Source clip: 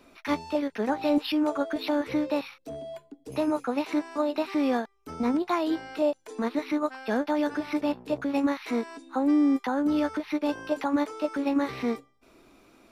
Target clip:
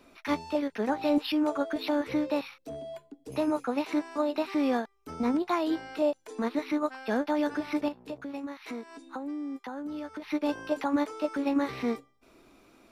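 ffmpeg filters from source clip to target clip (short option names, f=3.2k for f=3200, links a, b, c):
-filter_complex "[0:a]asettb=1/sr,asplit=3[a][b][c];[a]atrim=end=7.884[d];[b]atrim=start=7.88:end=10.22,asetpts=PTS-STARTPTS,afade=t=in:d=0.004:c=qsin,afade=t=out:st=2.336:d=0.004:c=qsin,acompressor=threshold=-35dB:ratio=4[e];[c]atrim=start=10.216[f];[d][e]acrossfade=d=0.004:c1=hsin:c2=qsin[g];[g][f]acrossfade=d=0.004:c1=qsin:c2=hsin,volume=-1.5dB"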